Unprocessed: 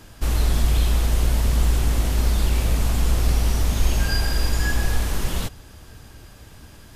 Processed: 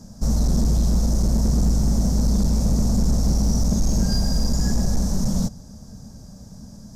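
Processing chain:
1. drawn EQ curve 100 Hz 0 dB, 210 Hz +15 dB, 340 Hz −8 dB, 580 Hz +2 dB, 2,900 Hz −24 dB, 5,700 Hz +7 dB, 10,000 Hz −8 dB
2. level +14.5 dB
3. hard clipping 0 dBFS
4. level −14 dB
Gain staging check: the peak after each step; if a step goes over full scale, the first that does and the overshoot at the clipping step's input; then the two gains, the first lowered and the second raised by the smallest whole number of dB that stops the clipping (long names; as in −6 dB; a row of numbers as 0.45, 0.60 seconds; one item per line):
−5.5, +9.0, 0.0, −14.0 dBFS
step 2, 9.0 dB
step 2 +5.5 dB, step 4 −5 dB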